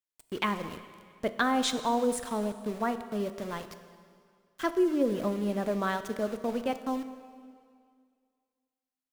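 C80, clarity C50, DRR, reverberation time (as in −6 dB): 12.5 dB, 11.5 dB, 10.0 dB, 2.1 s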